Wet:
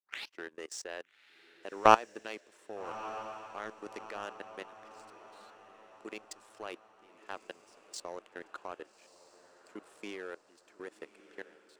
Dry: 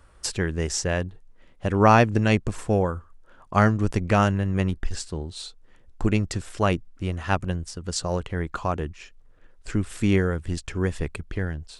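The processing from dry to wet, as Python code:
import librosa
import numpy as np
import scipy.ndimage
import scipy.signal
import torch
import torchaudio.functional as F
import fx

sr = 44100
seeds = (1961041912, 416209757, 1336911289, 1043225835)

y = fx.tape_start_head(x, sr, length_s=0.45)
y = scipy.signal.sosfilt(scipy.signal.butter(4, 350.0, 'highpass', fs=sr, output='sos'), y)
y = fx.level_steps(y, sr, step_db=16)
y = fx.power_curve(y, sr, exponent=1.4)
y = fx.echo_diffused(y, sr, ms=1237, feedback_pct=47, wet_db=-15.5)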